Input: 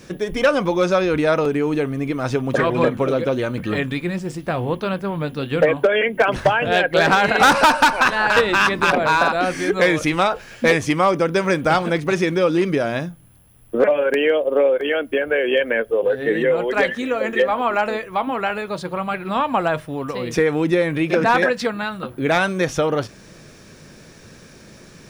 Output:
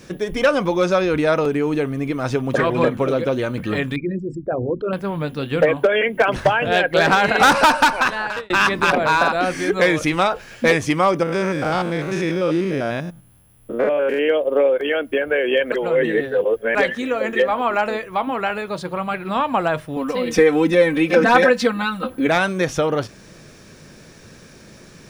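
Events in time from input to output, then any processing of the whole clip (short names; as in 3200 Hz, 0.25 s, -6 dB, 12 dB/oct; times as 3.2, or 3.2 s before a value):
3.96–4.93 formant sharpening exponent 3
7.69–8.5 fade out equal-power
11.23–14.29 stepped spectrum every 0.1 s
15.72–16.75 reverse
19.96–22.27 comb 3.9 ms, depth 96%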